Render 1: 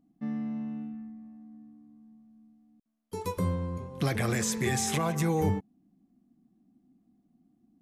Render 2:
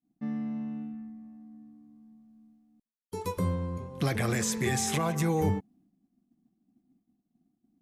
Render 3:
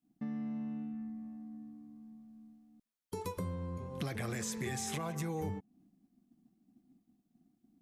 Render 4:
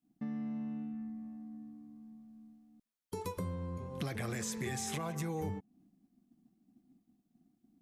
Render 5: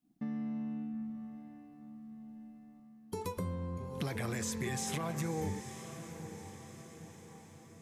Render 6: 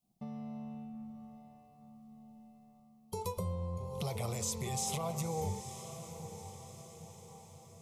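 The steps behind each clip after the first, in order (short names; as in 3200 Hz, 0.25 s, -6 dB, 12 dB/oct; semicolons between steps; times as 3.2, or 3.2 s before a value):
expander -59 dBFS
compressor 3:1, threshold -41 dBFS, peak gain reduction 14 dB; gain +2 dB
nothing audible
diffused feedback echo 0.919 s, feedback 52%, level -10.5 dB; gain +1 dB
fixed phaser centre 690 Hz, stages 4; gain +3.5 dB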